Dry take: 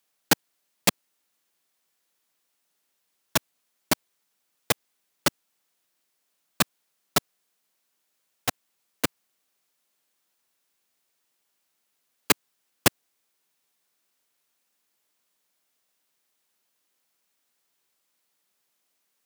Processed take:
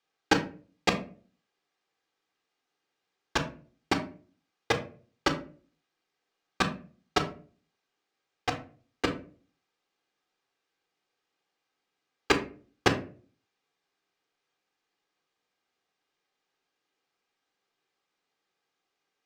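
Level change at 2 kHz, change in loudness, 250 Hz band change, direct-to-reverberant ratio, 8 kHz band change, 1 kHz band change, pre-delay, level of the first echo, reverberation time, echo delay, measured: −1.0 dB, −4.0 dB, +0.5 dB, 4.5 dB, −12.5 dB, +0.5 dB, 3 ms, no echo audible, 0.40 s, no echo audible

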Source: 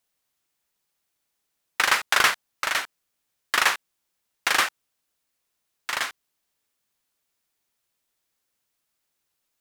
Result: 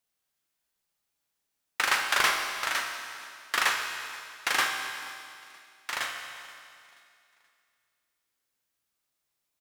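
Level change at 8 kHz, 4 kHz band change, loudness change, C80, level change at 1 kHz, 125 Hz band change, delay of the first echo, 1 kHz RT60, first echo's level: −4.0 dB, −3.5 dB, −5.0 dB, 5.0 dB, −3.5 dB, can't be measured, 479 ms, 2.6 s, −21.0 dB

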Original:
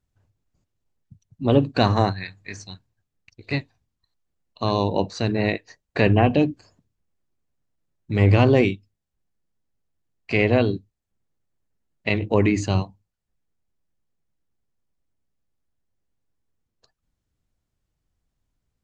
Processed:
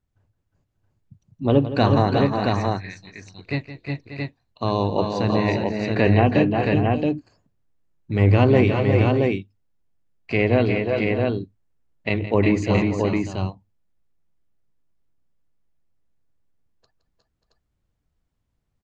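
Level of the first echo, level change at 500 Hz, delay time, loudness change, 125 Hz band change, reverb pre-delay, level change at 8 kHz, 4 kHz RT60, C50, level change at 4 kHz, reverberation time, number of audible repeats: −13.0 dB, +2.5 dB, 167 ms, +0.5 dB, +2.5 dB, no reverb audible, can't be measured, no reverb audible, no reverb audible, −0.5 dB, no reverb audible, 4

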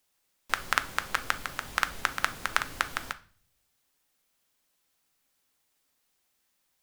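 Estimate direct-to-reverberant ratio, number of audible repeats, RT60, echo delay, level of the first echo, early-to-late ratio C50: 10.0 dB, no echo audible, 0.45 s, no echo audible, no echo audible, 18.5 dB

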